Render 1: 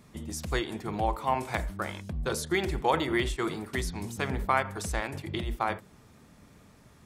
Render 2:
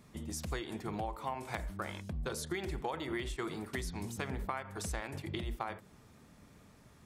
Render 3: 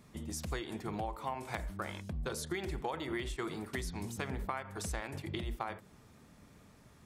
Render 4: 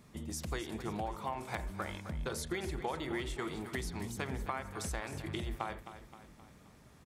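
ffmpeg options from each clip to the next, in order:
-af "acompressor=threshold=0.0316:ratio=10,volume=0.668"
-af anull
-af "aecho=1:1:262|524|786|1048|1310:0.251|0.126|0.0628|0.0314|0.0157"

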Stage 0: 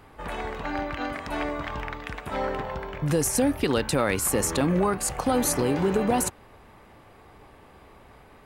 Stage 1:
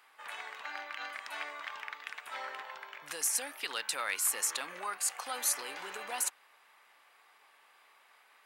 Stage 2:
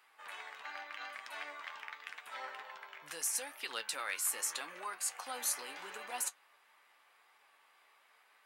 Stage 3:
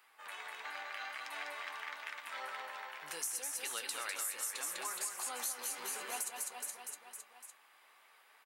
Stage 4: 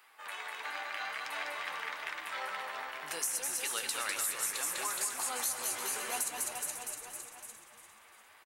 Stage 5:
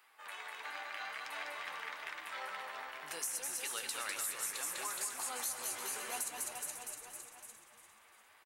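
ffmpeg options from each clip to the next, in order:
-af "highpass=1400,volume=0.668"
-af "flanger=delay=7.6:depth=5.8:regen=50:speed=0.82:shape=triangular"
-filter_complex "[0:a]asplit=2[s0][s1];[s1]aecho=0:1:200|420|662|928.2|1221:0.631|0.398|0.251|0.158|0.1[s2];[s0][s2]amix=inputs=2:normalize=0,crystalizer=i=0.5:c=0,acompressor=threshold=0.0158:ratio=6"
-filter_complex "[0:a]asplit=6[s0][s1][s2][s3][s4][s5];[s1]adelay=348,afreqshift=-130,volume=0.316[s6];[s2]adelay=696,afreqshift=-260,volume=0.136[s7];[s3]adelay=1044,afreqshift=-390,volume=0.0582[s8];[s4]adelay=1392,afreqshift=-520,volume=0.0251[s9];[s5]adelay=1740,afreqshift=-650,volume=0.0108[s10];[s0][s6][s7][s8][s9][s10]amix=inputs=6:normalize=0,volume=1.68"
-af "volume=15.8,asoftclip=hard,volume=0.0631,volume=0.596"

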